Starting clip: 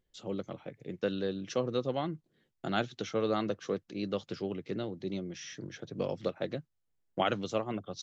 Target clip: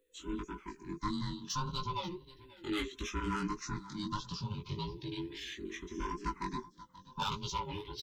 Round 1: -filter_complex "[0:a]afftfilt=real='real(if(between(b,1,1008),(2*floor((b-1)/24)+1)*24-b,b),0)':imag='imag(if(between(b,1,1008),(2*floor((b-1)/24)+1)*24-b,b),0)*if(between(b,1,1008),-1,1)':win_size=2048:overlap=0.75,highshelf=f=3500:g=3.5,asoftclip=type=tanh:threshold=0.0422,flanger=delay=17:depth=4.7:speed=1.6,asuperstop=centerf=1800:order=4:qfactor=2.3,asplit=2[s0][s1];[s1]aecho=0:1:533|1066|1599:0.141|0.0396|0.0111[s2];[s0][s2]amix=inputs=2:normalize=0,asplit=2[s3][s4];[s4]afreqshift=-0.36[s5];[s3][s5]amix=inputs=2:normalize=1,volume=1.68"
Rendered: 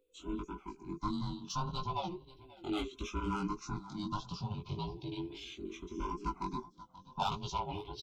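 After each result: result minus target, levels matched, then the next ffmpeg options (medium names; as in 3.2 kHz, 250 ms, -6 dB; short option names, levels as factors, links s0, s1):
2 kHz band -5.5 dB; 8 kHz band -4.5 dB
-filter_complex "[0:a]afftfilt=real='real(if(between(b,1,1008),(2*floor((b-1)/24)+1)*24-b,b),0)':imag='imag(if(between(b,1,1008),(2*floor((b-1)/24)+1)*24-b,b),0)*if(between(b,1,1008),-1,1)':win_size=2048:overlap=0.75,highshelf=f=3500:g=3.5,asoftclip=type=tanh:threshold=0.0422,flanger=delay=17:depth=4.7:speed=1.6,asuperstop=centerf=710:order=4:qfactor=2.3,asplit=2[s0][s1];[s1]aecho=0:1:533|1066|1599:0.141|0.0396|0.0111[s2];[s0][s2]amix=inputs=2:normalize=0,asplit=2[s3][s4];[s4]afreqshift=-0.36[s5];[s3][s5]amix=inputs=2:normalize=1,volume=1.68"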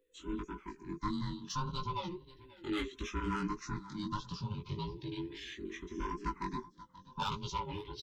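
8 kHz band -4.0 dB
-filter_complex "[0:a]afftfilt=real='real(if(between(b,1,1008),(2*floor((b-1)/24)+1)*24-b,b),0)':imag='imag(if(between(b,1,1008),(2*floor((b-1)/24)+1)*24-b,b),0)*if(between(b,1,1008),-1,1)':win_size=2048:overlap=0.75,highshelf=f=3500:g=10.5,asoftclip=type=tanh:threshold=0.0422,flanger=delay=17:depth=4.7:speed=1.6,asuperstop=centerf=710:order=4:qfactor=2.3,asplit=2[s0][s1];[s1]aecho=0:1:533|1066|1599:0.141|0.0396|0.0111[s2];[s0][s2]amix=inputs=2:normalize=0,asplit=2[s3][s4];[s4]afreqshift=-0.36[s5];[s3][s5]amix=inputs=2:normalize=1,volume=1.68"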